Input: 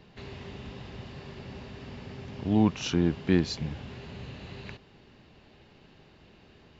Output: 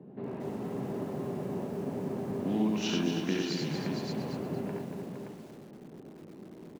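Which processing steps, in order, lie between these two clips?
low-pass that shuts in the quiet parts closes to 390 Hz, open at −23 dBFS
high-pass filter 160 Hz 24 dB per octave
downward compressor 4 to 1, threshold −43 dBFS, peak gain reduction 20 dB
multi-tap delay 67/70/89/112/463/573 ms −11/−5/−5/−15.5/−8/−6 dB
feedback echo at a low word length 234 ms, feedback 35%, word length 10 bits, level −6.5 dB
level +9 dB

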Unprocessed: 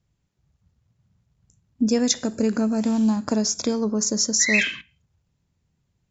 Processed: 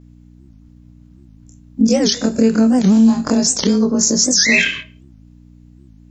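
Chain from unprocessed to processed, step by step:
every overlapping window played backwards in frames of 54 ms
on a send at −14 dB: convolution reverb RT60 0.50 s, pre-delay 5 ms
on the sum: dynamic equaliser 860 Hz, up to −4 dB, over −36 dBFS, Q 0.82
in parallel at +1 dB: downward compressor, threshold −30 dBFS, peak gain reduction 11.5 dB
on the sum: hum with harmonics 60 Hz, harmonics 5, −52 dBFS −3 dB per octave
boost into a limiter +10.5 dB
wow of a warped record 78 rpm, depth 250 cents
level −2.5 dB

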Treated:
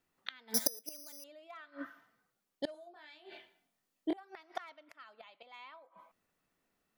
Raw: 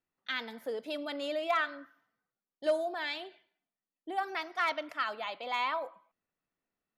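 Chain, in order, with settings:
0:05.11–0:05.76: dynamic equaliser 2,800 Hz, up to +4 dB, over −45 dBFS, Q 0.99
gate with flip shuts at −32 dBFS, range −30 dB
0:00.54–0:01.24: bad sample-rate conversion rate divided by 8×, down filtered, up zero stuff
0:02.72–0:04.17: double-tracking delay 23 ms −2.5 dB
level +8.5 dB

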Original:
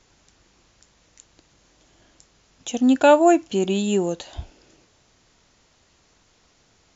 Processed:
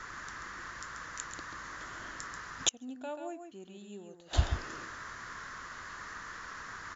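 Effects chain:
noise in a band 1,000–1,900 Hz −53 dBFS
single-tap delay 136 ms −7 dB
gate with flip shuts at −19 dBFS, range −34 dB
level +7 dB

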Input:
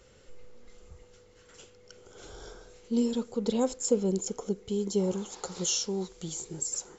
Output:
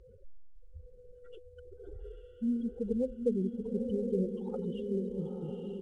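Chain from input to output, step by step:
expanding power law on the bin magnitudes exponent 3.3
dynamic equaliser 1,800 Hz, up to −4 dB, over −53 dBFS, Q 1
in parallel at +3 dB: downward compressor 16 to 1, threshold −42 dBFS, peak gain reduction 22 dB
on the sum: tempo change 1.2×
downsampling to 8,000 Hz
feedback delay with all-pass diffusion 907 ms, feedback 53%, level −4 dB
level −5 dB
IMA ADPCM 88 kbit/s 22,050 Hz

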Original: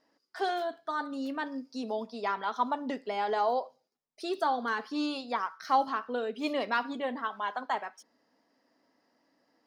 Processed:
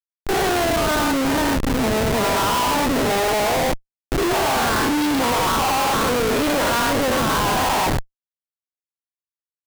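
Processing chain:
every bin's largest magnitude spread in time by 240 ms
comparator with hysteresis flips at −29.5 dBFS
level +7 dB

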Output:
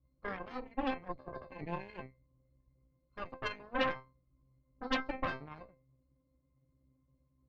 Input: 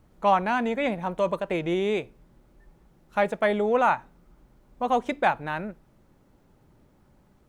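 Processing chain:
0:01.08–0:01.64: compressor whose output falls as the input rises −32 dBFS, ratio −1
resonances in every octave C, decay 0.36 s
harmonic generator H 3 −20 dB, 8 −7 dB, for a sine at −24 dBFS
level +1.5 dB

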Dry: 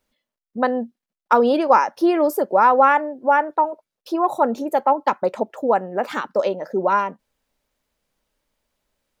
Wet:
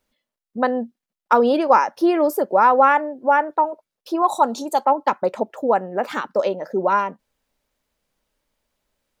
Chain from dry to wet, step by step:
0:04.22–0:04.85: octave-band graphic EQ 125/500/1,000/2,000/4,000/8,000 Hz −10/−6/+7/−10/+11/+11 dB

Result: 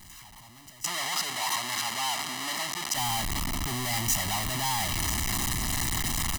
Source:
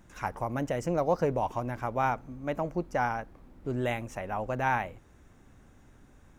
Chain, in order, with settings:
sign of each sample alone
0:00.84–0:02.95: meter weighting curve A
noise gate with hold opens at −31 dBFS
high-shelf EQ 2,100 Hz +12 dB
comb filter 1 ms, depth 99%
level −3.5 dB

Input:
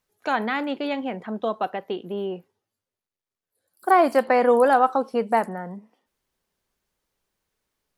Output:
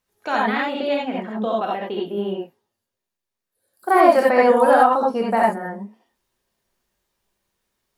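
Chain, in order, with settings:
reverb whose tail is shaped and stops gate 110 ms rising, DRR −3.5 dB
level −1 dB

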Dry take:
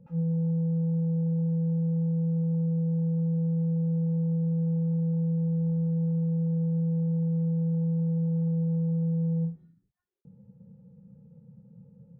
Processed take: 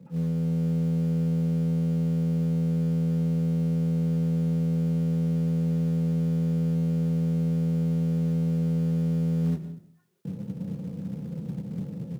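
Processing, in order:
sub-octave generator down 1 octave, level −3 dB
in parallel at −5.5 dB: floating-point word with a short mantissa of 2 bits
on the sum: automatic gain control gain up to 12 dB
high-pass filter 140 Hz 24 dB per octave
reversed playback
downward compressor 12 to 1, threshold −27 dBFS, peak gain reduction 17 dB
reversed playback
low-shelf EQ 260 Hz +5 dB
convolution reverb RT60 0.40 s, pre-delay 105 ms, DRR 17 dB

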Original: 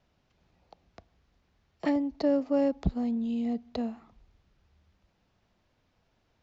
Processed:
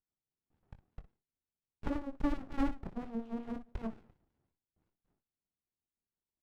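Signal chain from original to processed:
noise gate with hold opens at −57 dBFS
LFO wah 5.6 Hz 370–1,400 Hz, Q 3.7
ambience of single reflections 22 ms −10 dB, 60 ms −14 dB
windowed peak hold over 65 samples
level +7 dB

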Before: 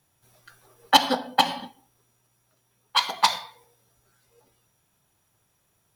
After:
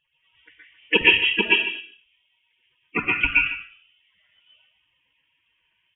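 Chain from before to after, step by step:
spectral magnitudes quantised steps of 30 dB
high-pass filter 260 Hz 12 dB per octave
convolution reverb RT60 0.30 s, pre-delay 112 ms, DRR −4 dB
voice inversion scrambler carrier 3,500 Hz
single-tap delay 148 ms −14.5 dB
level −1 dB

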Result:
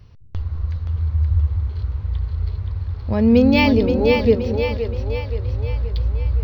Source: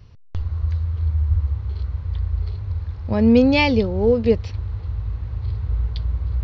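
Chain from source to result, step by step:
echo with a time of its own for lows and highs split 350 Hz, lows 204 ms, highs 524 ms, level −5 dB
linearly interpolated sample-rate reduction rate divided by 2×

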